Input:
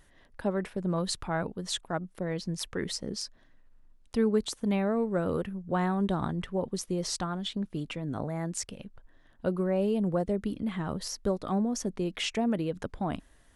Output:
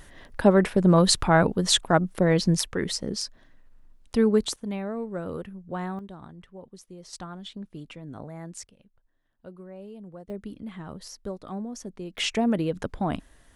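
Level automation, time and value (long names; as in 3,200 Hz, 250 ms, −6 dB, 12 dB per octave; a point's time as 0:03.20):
+12 dB
from 0:02.61 +5 dB
from 0:04.56 −4 dB
from 0:05.99 −13.5 dB
from 0:07.13 −6 dB
from 0:08.67 −15 dB
from 0:10.30 −6 dB
from 0:12.18 +4.5 dB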